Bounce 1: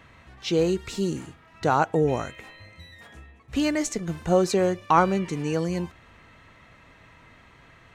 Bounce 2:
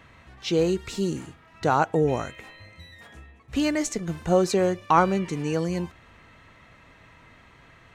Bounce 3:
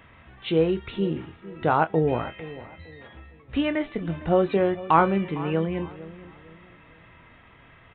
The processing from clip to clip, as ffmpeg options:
-af anull
-filter_complex "[0:a]asplit=2[a][b];[b]adelay=25,volume=-10.5dB[c];[a][c]amix=inputs=2:normalize=0,asplit=2[d][e];[e]adelay=456,lowpass=f=1.3k:p=1,volume=-16dB,asplit=2[f][g];[g]adelay=456,lowpass=f=1.3k:p=1,volume=0.35,asplit=2[h][i];[i]adelay=456,lowpass=f=1.3k:p=1,volume=0.35[j];[d][f][h][j]amix=inputs=4:normalize=0,aresample=8000,aresample=44100"

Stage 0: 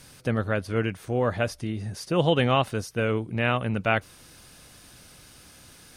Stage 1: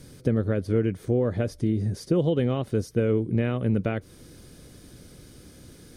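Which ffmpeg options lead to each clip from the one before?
-af "bandreject=f=2.7k:w=9.5,acompressor=threshold=-26dB:ratio=5,lowshelf=f=590:t=q:w=1.5:g=10,volume=-3.5dB"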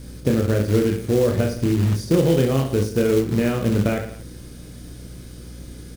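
-af "aecho=1:1:30|67.5|114.4|173|246.2:0.631|0.398|0.251|0.158|0.1,acrusher=bits=4:mode=log:mix=0:aa=0.000001,aeval=exprs='val(0)+0.00891*(sin(2*PI*60*n/s)+sin(2*PI*2*60*n/s)/2+sin(2*PI*3*60*n/s)/3+sin(2*PI*4*60*n/s)/4+sin(2*PI*5*60*n/s)/5)':c=same,volume=3.5dB"

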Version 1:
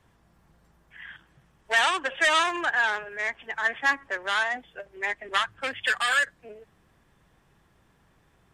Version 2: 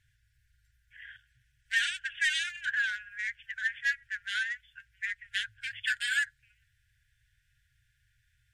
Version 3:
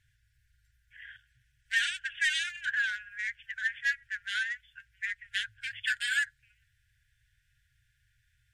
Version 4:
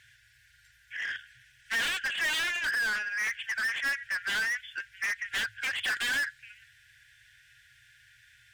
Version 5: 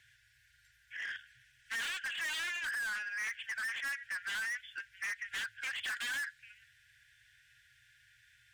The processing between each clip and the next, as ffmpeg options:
-af "afftfilt=real='re*(1-between(b*sr/4096,130,1400))':imag='im*(1-between(b*sr/4096,130,1400))':win_size=4096:overlap=0.75,volume=-5dB"
-af anull
-filter_complex "[0:a]asplit=2[a][b];[b]highpass=f=720:p=1,volume=30dB,asoftclip=type=tanh:threshold=-17dB[c];[a][c]amix=inputs=2:normalize=0,lowpass=f=5.3k:p=1,volume=-6dB,volume=-6dB"
-filter_complex "[0:a]acrossover=split=730|1100[a][b][c];[a]acompressor=threshold=-58dB:ratio=6[d];[c]asoftclip=type=hard:threshold=-29.5dB[e];[d][b][e]amix=inputs=3:normalize=0,volume=-6dB"

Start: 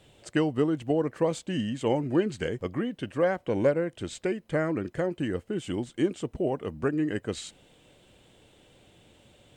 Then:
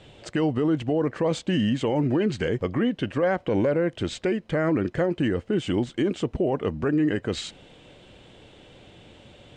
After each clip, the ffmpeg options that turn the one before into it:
-af "lowpass=5.2k,alimiter=limit=-24dB:level=0:latency=1:release=30,volume=8.5dB"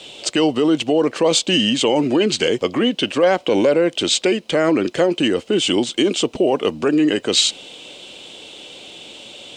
-filter_complex "[0:a]acrossover=split=220 2200:gain=0.112 1 0.224[a][b][c];[a][b][c]amix=inputs=3:normalize=0,aexciter=amount=9.2:drive=7.3:freq=2.7k,volume=8.5dB"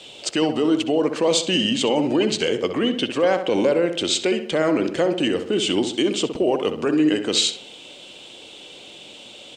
-filter_complex "[0:a]asplit=2[a][b];[b]adelay=65,lowpass=f=2.4k:p=1,volume=-8dB,asplit=2[c][d];[d]adelay=65,lowpass=f=2.4k:p=1,volume=0.5,asplit=2[e][f];[f]adelay=65,lowpass=f=2.4k:p=1,volume=0.5,asplit=2[g][h];[h]adelay=65,lowpass=f=2.4k:p=1,volume=0.5,asplit=2[i][j];[j]adelay=65,lowpass=f=2.4k:p=1,volume=0.5,asplit=2[k][l];[l]adelay=65,lowpass=f=2.4k:p=1,volume=0.5[m];[a][c][e][g][i][k][m]amix=inputs=7:normalize=0,volume=-4dB"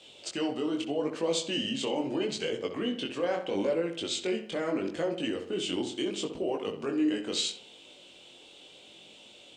-af "flanger=delay=18:depth=5.3:speed=0.77,volume=-8dB"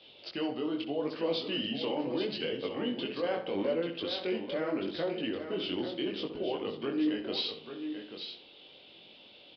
-af "aecho=1:1:838:0.376,aresample=11025,aresample=44100,volume=-2.5dB"

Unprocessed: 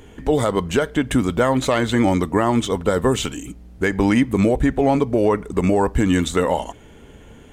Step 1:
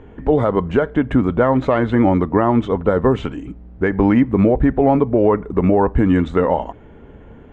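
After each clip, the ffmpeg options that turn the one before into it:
-af "lowpass=1.5k,volume=3dB"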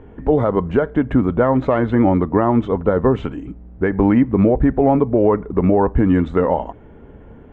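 -af "highshelf=f=2.8k:g=-9.5"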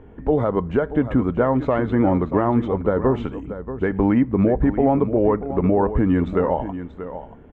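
-af "aecho=1:1:634:0.251,volume=-3.5dB"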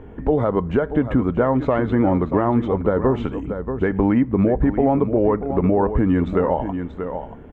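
-af "acompressor=threshold=-27dB:ratio=1.5,volume=5dB"

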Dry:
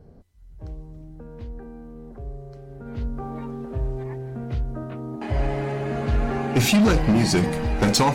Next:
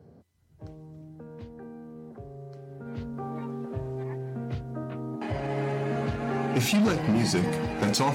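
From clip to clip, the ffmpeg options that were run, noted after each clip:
-af "alimiter=limit=-16.5dB:level=0:latency=1,highpass=f=94:w=0.5412,highpass=f=94:w=1.3066,volume=-2dB"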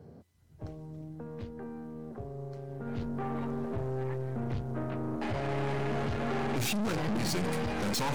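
-af "aeval=exprs='(tanh(50.1*val(0)+0.55)-tanh(0.55))/50.1':c=same,volume=4.5dB"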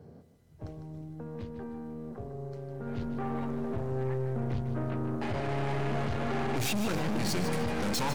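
-af "aecho=1:1:153|306|459|612:0.316|0.133|0.0558|0.0234"

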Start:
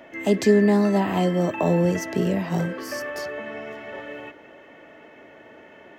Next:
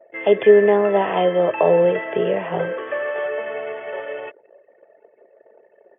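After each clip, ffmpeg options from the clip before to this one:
-af "anlmdn=0.631,afftfilt=real='re*between(b*sr/4096,100,3500)':imag='im*between(b*sr/4096,100,3500)':win_size=4096:overlap=0.75,lowshelf=f=350:t=q:w=3:g=-8.5,volume=4dB"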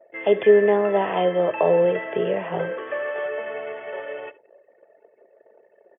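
-af "aecho=1:1:72:0.1,volume=-3dB"

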